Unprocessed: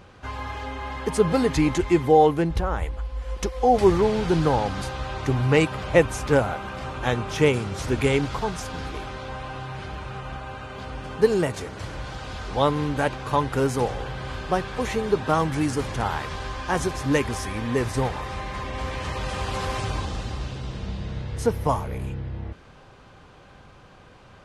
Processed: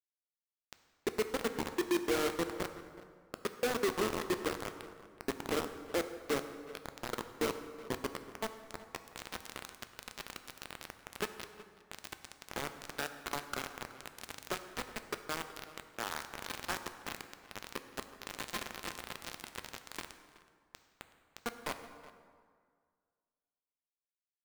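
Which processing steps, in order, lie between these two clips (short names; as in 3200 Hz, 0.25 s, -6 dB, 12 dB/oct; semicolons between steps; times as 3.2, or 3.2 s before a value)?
octaver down 2 oct, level 0 dB; steep high-pass 200 Hz 48 dB/oct; bell 850 Hz -13 dB 2.5 oct; notches 50/100/150/200/250/300/350 Hz; compressor 10:1, threshold -41 dBFS, peak gain reduction 21 dB; low-pass sweep 500 Hz -> 1500 Hz, 7.57–9.43; resonator 350 Hz, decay 0.61 s, mix 80%; requantised 8-bit, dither none; outdoor echo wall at 64 m, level -17 dB; plate-style reverb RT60 2 s, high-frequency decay 0.6×, DRR 8.5 dB; gain +16.5 dB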